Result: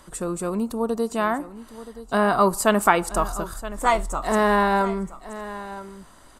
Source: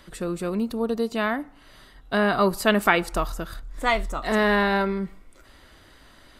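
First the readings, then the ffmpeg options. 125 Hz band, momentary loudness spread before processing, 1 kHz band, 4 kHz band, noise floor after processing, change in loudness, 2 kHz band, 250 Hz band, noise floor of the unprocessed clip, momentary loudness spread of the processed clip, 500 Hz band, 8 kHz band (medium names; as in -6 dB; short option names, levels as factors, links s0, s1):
+0.5 dB, 11 LU, +4.5 dB, -3.5 dB, -50 dBFS, +1.5 dB, -2.0 dB, +0.5 dB, -53 dBFS, 18 LU, +1.5 dB, +8.5 dB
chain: -filter_complex "[0:a]equalizer=f=1000:t=o:w=1:g=7,equalizer=f=2000:t=o:w=1:g=-5,equalizer=f=4000:t=o:w=1:g=-6,equalizer=f=8000:t=o:w=1:g=11,asplit=2[s0][s1];[s1]aecho=0:1:974:0.178[s2];[s0][s2]amix=inputs=2:normalize=0"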